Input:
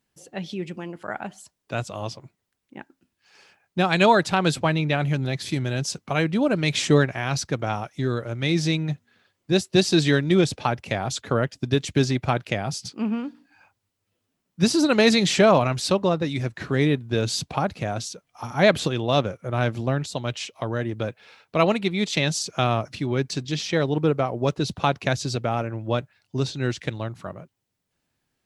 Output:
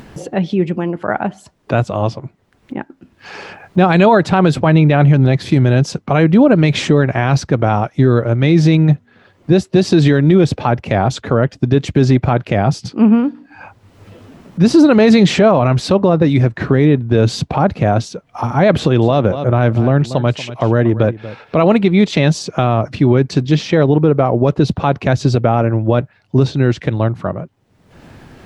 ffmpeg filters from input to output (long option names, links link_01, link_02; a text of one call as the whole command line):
ffmpeg -i in.wav -filter_complex "[0:a]asettb=1/sr,asplit=3[link_01][link_02][link_03];[link_01]atrim=end=18.784[link_04];[link_02]atrim=start=18.78:end=21.71,asetpts=PTS-STARTPTS,afade=type=in:duration=0.004:curve=qsin,afade=type=out:start_time=2.926:duration=0.004:curve=qsin,aecho=1:1:235:0.141,atrim=end_sample=129213[link_05];[link_03]atrim=start=21.706[link_06];[link_04][link_05]acrossfade=duration=0.004:curve1=hsin:curve2=qsin[link_07];[link_07][link_06]acrossfade=duration=0.004:curve1=qsin:curve2=hsin,lowpass=frequency=1000:poles=1,acompressor=mode=upward:threshold=-35dB:ratio=2.5,alimiter=level_in=17dB:limit=-1dB:release=50:level=0:latency=1,volume=-1dB" out.wav